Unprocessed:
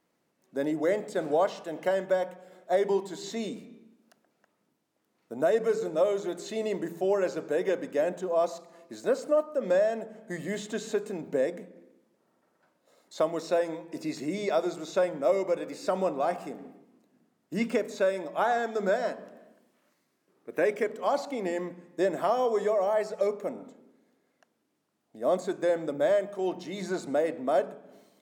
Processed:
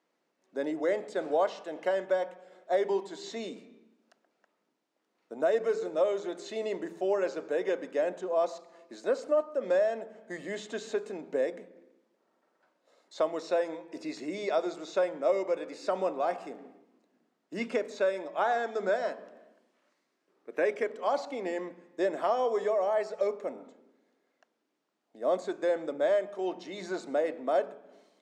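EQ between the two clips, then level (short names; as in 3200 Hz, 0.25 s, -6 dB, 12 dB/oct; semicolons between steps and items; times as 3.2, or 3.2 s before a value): BPF 290–6300 Hz; -1.5 dB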